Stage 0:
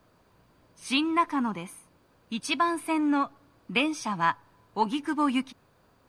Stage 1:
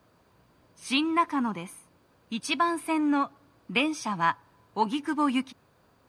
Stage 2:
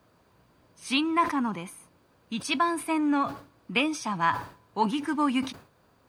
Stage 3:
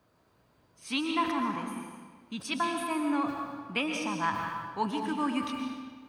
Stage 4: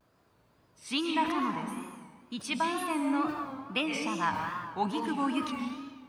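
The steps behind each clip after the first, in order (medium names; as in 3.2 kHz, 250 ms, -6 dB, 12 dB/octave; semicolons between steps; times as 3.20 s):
high-pass 47 Hz
decay stretcher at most 130 dB/s
algorithmic reverb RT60 1.5 s, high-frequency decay 0.85×, pre-delay 85 ms, DRR 2.5 dB; trim -5.5 dB
wow and flutter 110 cents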